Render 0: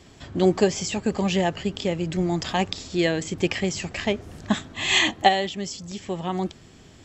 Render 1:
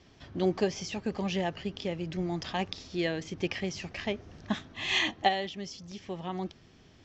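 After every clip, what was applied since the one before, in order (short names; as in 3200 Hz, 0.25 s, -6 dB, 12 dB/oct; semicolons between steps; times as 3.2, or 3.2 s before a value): Chebyshev low-pass 6000 Hz, order 4; gain -7.5 dB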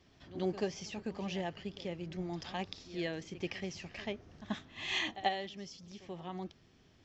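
pre-echo 85 ms -15 dB; gain -7 dB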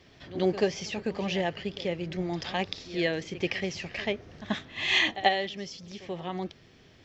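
graphic EQ 125/500/2000/4000 Hz +3/+6/+6/+4 dB; gain +5 dB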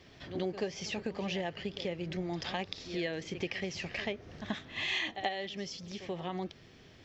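compressor 3:1, threshold -34 dBFS, peak gain reduction 12.5 dB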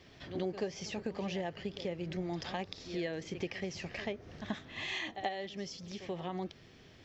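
dynamic EQ 2900 Hz, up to -5 dB, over -48 dBFS, Q 0.84; gain -1 dB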